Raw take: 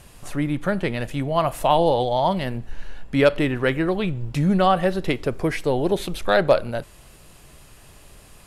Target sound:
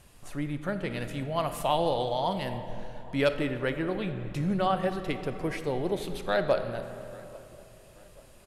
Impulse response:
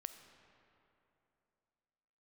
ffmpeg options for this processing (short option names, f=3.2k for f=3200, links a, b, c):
-filter_complex "[0:a]asplit=2[a][b];[b]adelay=837,lowpass=f=2k:p=1,volume=-22dB,asplit=2[c][d];[d]adelay=837,lowpass=f=2k:p=1,volume=0.44,asplit=2[e][f];[f]adelay=837,lowpass=f=2k:p=1,volume=0.44[g];[a][c][e][g]amix=inputs=4:normalize=0[h];[1:a]atrim=start_sample=2205[i];[h][i]afir=irnorm=-1:irlink=0,asplit=3[j][k][l];[j]afade=t=out:st=0.9:d=0.02[m];[k]adynamicequalizer=threshold=0.0158:dfrequency=2200:dqfactor=0.7:tfrequency=2200:tqfactor=0.7:attack=5:release=100:ratio=0.375:range=2.5:mode=boostabove:tftype=highshelf,afade=t=in:st=0.9:d=0.02,afade=t=out:st=3.33:d=0.02[n];[l]afade=t=in:st=3.33:d=0.02[o];[m][n][o]amix=inputs=3:normalize=0,volume=-4.5dB"